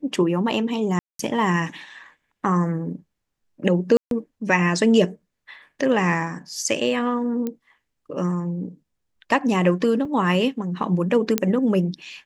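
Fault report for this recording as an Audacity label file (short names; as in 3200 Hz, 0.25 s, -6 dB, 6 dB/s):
0.990000	1.190000	gap 0.203 s
3.970000	4.110000	gap 0.142 s
7.470000	7.470000	pop -15 dBFS
10.050000	10.050000	gap 3.7 ms
11.380000	11.380000	pop -4 dBFS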